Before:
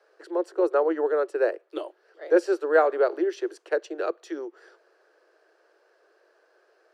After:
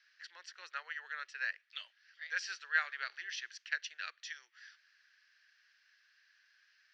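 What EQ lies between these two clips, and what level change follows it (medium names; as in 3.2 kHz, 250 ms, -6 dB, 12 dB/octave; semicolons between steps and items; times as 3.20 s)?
Chebyshev band-pass 1.8–5.8 kHz, order 3; +4.5 dB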